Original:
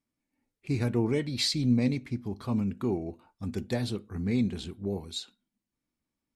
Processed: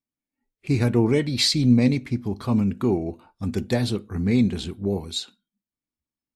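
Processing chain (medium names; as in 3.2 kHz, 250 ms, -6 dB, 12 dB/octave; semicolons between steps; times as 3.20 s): spectral noise reduction 16 dB; trim +7.5 dB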